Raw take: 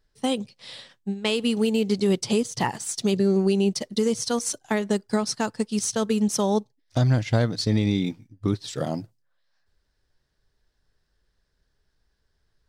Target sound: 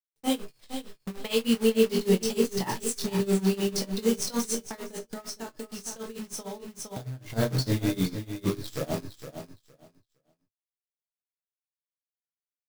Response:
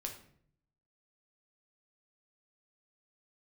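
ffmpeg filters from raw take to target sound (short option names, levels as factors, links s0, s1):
-filter_complex "[0:a]asplit=2[s0][s1];[s1]adelay=22,volume=0.596[s2];[s0][s2]amix=inputs=2:normalize=0,acrusher=bits=6:dc=4:mix=0:aa=0.000001,agate=range=0.1:threshold=0.00316:ratio=16:detection=peak,aecho=1:1:463|926|1389:0.335|0.0603|0.0109[s3];[1:a]atrim=start_sample=2205,atrim=end_sample=3087[s4];[s3][s4]afir=irnorm=-1:irlink=0,tremolo=f=6.6:d=0.9,asplit=3[s5][s6][s7];[s5]afade=t=out:st=4.62:d=0.02[s8];[s6]acompressor=threshold=0.02:ratio=16,afade=t=in:st=4.62:d=0.02,afade=t=out:st=7.29:d=0.02[s9];[s7]afade=t=in:st=7.29:d=0.02[s10];[s8][s9][s10]amix=inputs=3:normalize=0,highshelf=f=9900:g=4.5"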